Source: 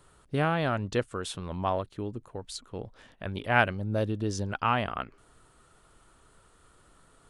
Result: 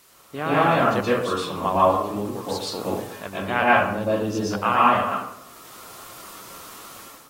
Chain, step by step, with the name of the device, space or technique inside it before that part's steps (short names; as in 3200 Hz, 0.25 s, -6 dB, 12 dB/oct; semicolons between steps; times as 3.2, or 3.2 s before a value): filmed off a television (BPF 200–7600 Hz; bell 1100 Hz +7 dB 0.38 oct; reverb RT60 0.70 s, pre-delay 0.113 s, DRR -7.5 dB; white noise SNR 27 dB; AGC gain up to 11.5 dB; gain -5 dB; AAC 48 kbps 44100 Hz)